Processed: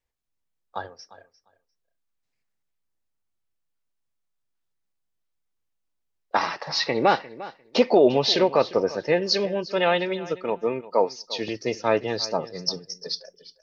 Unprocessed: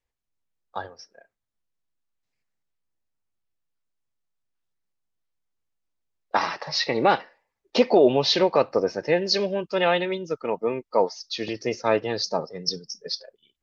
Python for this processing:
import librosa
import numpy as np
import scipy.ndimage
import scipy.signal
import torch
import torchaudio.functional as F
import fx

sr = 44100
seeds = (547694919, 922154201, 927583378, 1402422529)

y = fx.highpass(x, sr, hz=180.0, slope=12, at=(10.82, 11.27))
y = fx.echo_feedback(y, sr, ms=350, feedback_pct=16, wet_db=-17.5)